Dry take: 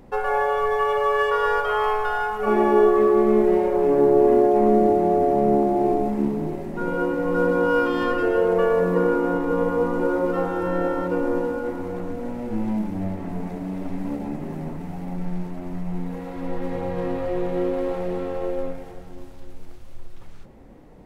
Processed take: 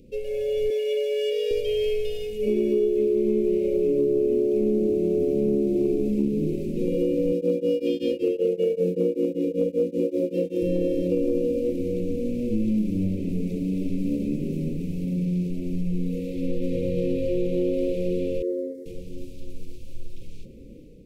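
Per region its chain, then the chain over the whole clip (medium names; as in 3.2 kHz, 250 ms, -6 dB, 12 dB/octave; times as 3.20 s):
0.70–1.51 s: rippled Chebyshev high-pass 430 Hz, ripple 3 dB + level flattener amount 50%
7.32–10.62 s: high-pass 150 Hz + tremolo of two beating tones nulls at 5.2 Hz
15.04–15.50 s: high-pass 70 Hz 6 dB/octave + peaking EQ 150 Hz +5 dB 0.43 oct
18.42–18.86 s: high-pass 180 Hz 24 dB/octave + resonant high shelf 2.4 kHz -8 dB, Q 3 + static phaser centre 660 Hz, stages 6
whole clip: level rider gain up to 6 dB; Chebyshev band-stop 520–2400 Hz, order 4; compression 5:1, threshold -17 dBFS; trim -2 dB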